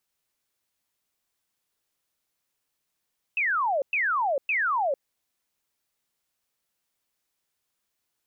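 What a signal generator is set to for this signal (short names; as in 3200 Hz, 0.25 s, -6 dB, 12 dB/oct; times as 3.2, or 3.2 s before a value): burst of laser zaps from 2700 Hz, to 520 Hz, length 0.45 s sine, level -22 dB, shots 3, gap 0.11 s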